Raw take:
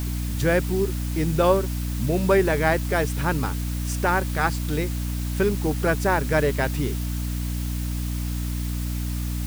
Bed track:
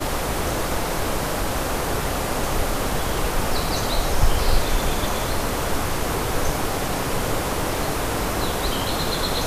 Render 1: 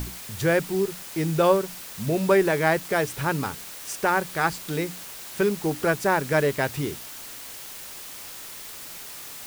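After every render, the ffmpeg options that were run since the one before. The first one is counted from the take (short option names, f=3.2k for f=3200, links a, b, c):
-af "bandreject=f=60:t=h:w=6,bandreject=f=120:t=h:w=6,bandreject=f=180:t=h:w=6,bandreject=f=240:t=h:w=6,bandreject=f=300:t=h:w=6"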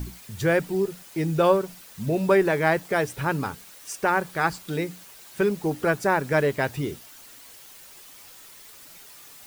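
-af "afftdn=nr=9:nf=-40"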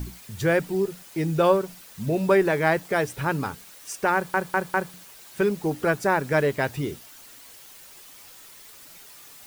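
-filter_complex "[0:a]asplit=5[a][b][c][d][e];[a]atrim=end=4.342[f];[b]atrim=start=4.138:end=4.342[g];[c]atrim=start=4.138:end=4.342[h];[d]atrim=start=4.138:end=4.342[i];[e]atrim=start=4.938[j];[f][g]acrossfade=d=0.004:c1=hsin:c2=hsin[k];[k][h]acrossfade=d=0.004:c1=hsin:c2=hsin[l];[l][i]acrossfade=d=0.004:c1=hsin:c2=hsin[m];[m][j]acrossfade=d=0.004:c1=hsin:c2=hsin"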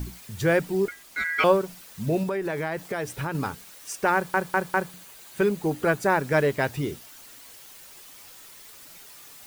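-filter_complex "[0:a]asettb=1/sr,asplit=3[a][b][c];[a]atrim=end=0.884[d];[b]atrim=start=0.88:end=1.44,asetpts=PTS-STARTPTS,afade=t=in:d=0.004:c=qsin,afade=t=out:st=0.556:d=0.004:c=qsin,aeval=exprs='val(0)*sin(2*PI*1800*n/s)':c=same[e];[c]atrim=start=1.436[f];[d][e]acrossfade=d=0.004:c1=hsin:c2=qsin[g];[g][f]acrossfade=d=0.004:c1=qsin:c2=hsin,asettb=1/sr,asplit=3[h][i][j];[h]atrim=end=2.234[k];[i]atrim=start=2.23:end=3.35,asetpts=PTS-STARTPTS,afade=t=in:d=0.004:c=qsin,afade=t=out:st=1.116:d=0.004:c=qsin,acompressor=threshold=-25dB:ratio=6:attack=3.2:release=140:knee=1:detection=peak[l];[j]atrim=start=3.346[m];[k][l]acrossfade=d=0.004:c1=hsin:c2=qsin[n];[n][m]acrossfade=d=0.004:c1=qsin:c2=hsin,asettb=1/sr,asplit=3[o][p][q];[o]atrim=end=4.864[r];[p]atrim=start=4.86:end=6.1,asetpts=PTS-STARTPTS,afade=t=in:d=0.004:c=qsin,afade=t=out:st=1.236:d=0.004:c=qsin,bandreject=f=5.4k:w=12[s];[q]atrim=start=6.096[t];[r][s]acrossfade=d=0.004:c1=hsin:c2=qsin[u];[u][t]acrossfade=d=0.004:c1=qsin:c2=hsin"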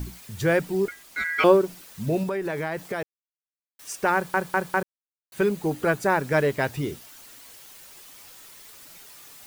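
-filter_complex "[0:a]asettb=1/sr,asplit=3[a][b][c];[a]atrim=end=1.444[d];[b]atrim=start=1.44:end=1.85,asetpts=PTS-STARTPTS,afade=t=in:d=0.004:c=qsin,afade=t=out:st=0.406:d=0.004:c=qsin,equalizer=f=340:w=2.2:g=8.5[e];[c]atrim=start=1.846[f];[d][e]acrossfade=d=0.004:c1=hsin:c2=qsin[g];[g][f]acrossfade=d=0.004:c1=qsin:c2=hsin,asplit=5[h][i][j][k][l];[h]atrim=end=3.03,asetpts=PTS-STARTPTS,afade=t=out:st=3.026:d=0.004:c=hsin[m];[i]atrim=start=3.03:end=3.79,asetpts=PTS-STARTPTS,volume=0[n];[j]atrim=start=3.79:end=4.83,asetpts=PTS-STARTPTS,afade=t=in:d=0.004:c=hsin,afade=t=out:st=1.036:d=0.004:c=hsin[o];[k]atrim=start=4.83:end=5.32,asetpts=PTS-STARTPTS,volume=0[p];[l]atrim=start=5.32,asetpts=PTS-STARTPTS,afade=t=in:d=0.004:c=hsin[q];[m][n][o][p][q]concat=n=5:v=0:a=1"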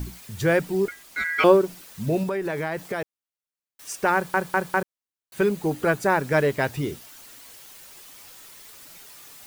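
-af "volume=1dB"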